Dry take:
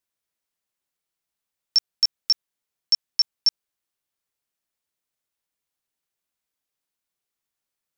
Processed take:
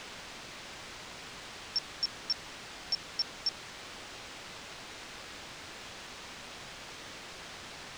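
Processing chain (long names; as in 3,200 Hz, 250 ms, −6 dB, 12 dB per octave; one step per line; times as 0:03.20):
brickwall limiter −15.5 dBFS, peak gain reduction 4 dB
bit-depth reduction 6 bits, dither triangular
high-frequency loss of the air 130 metres
level −2.5 dB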